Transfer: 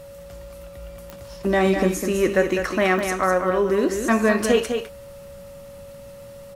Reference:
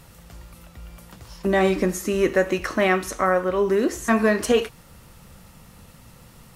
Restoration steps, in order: de-click; band-stop 560 Hz, Q 30; inverse comb 203 ms -6.5 dB

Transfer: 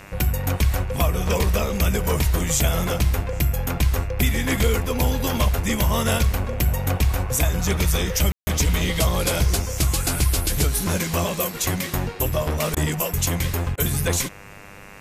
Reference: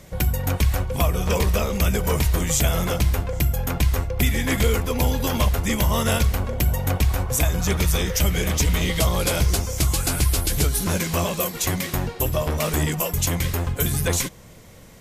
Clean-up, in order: de-hum 99.9 Hz, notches 28; room tone fill 8.32–8.47 s; interpolate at 12.75/13.76 s, 15 ms

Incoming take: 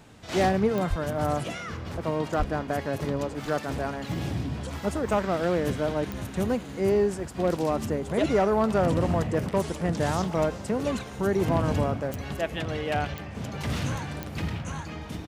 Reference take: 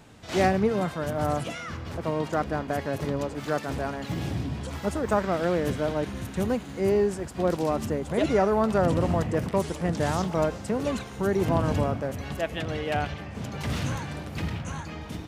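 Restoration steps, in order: clip repair -15 dBFS; de-click; de-plosive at 0.89/2.38 s; inverse comb 1054 ms -23.5 dB

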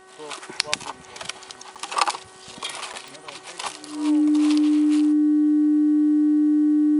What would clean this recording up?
de-click; de-hum 376.6 Hz, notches 5; band-stop 300 Hz, Q 30; interpolate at 1.75/2.93 s, 7.1 ms

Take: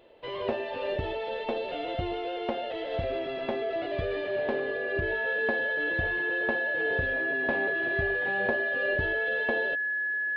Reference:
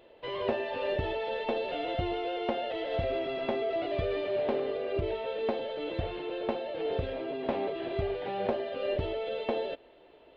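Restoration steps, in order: band-stop 1.7 kHz, Q 30

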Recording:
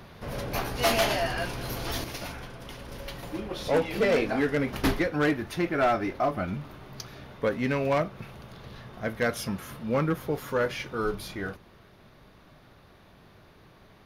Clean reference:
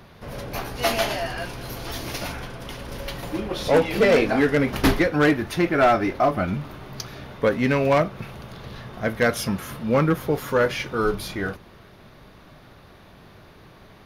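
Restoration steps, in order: clip repair -17.5 dBFS; trim 0 dB, from 2.04 s +6.5 dB

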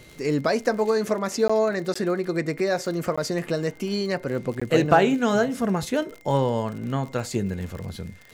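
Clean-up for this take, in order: de-click; band-stop 2.1 kHz, Q 30; interpolate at 1.48/1.94/3.16/4.60 s, 15 ms

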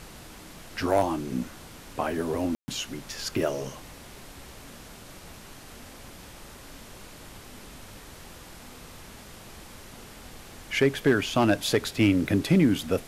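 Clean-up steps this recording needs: clip repair -12.5 dBFS; room tone fill 2.55–2.68 s; noise reduction 25 dB, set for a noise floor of -46 dBFS

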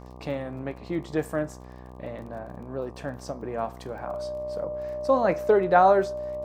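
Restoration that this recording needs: de-click; de-hum 62.5 Hz, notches 19; band-stop 600 Hz, Q 30

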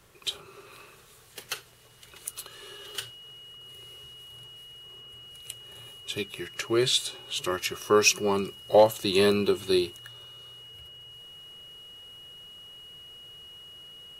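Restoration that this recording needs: clip repair -10 dBFS; band-stop 2.9 kHz, Q 30

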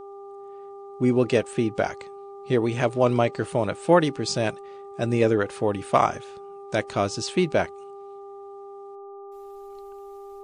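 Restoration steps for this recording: de-hum 398.4 Hz, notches 3

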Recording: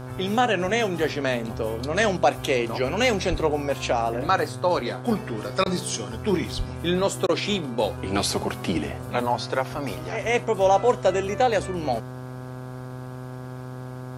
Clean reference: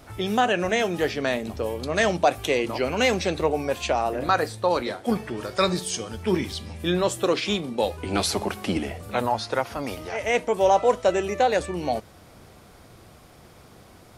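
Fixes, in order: de-hum 127.2 Hz, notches 13; 3.30–3.42 s: high-pass 140 Hz 24 dB/octave; 6.57–6.69 s: high-pass 140 Hz 24 dB/octave; interpolate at 5.64/7.27 s, 18 ms

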